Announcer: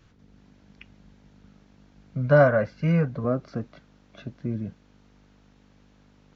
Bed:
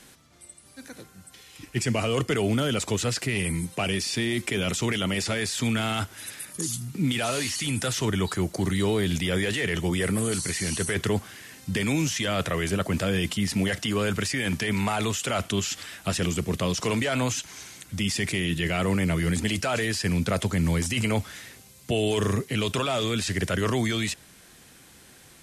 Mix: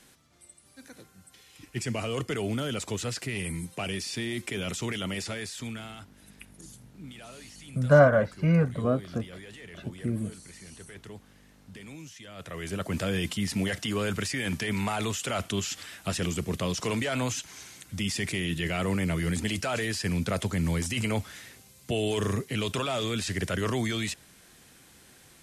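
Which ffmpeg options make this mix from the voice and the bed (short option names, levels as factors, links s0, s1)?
-filter_complex "[0:a]adelay=5600,volume=0.944[s0];[1:a]volume=3.16,afade=t=out:st=5.14:d=0.9:silence=0.211349,afade=t=in:st=12.34:d=0.68:silence=0.158489[s1];[s0][s1]amix=inputs=2:normalize=0"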